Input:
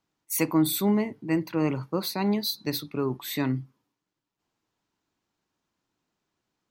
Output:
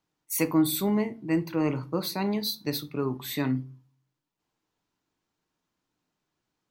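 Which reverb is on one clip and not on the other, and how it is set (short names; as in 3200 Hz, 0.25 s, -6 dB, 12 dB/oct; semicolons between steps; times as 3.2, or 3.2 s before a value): shoebox room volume 150 m³, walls furnished, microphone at 0.47 m; gain -1.5 dB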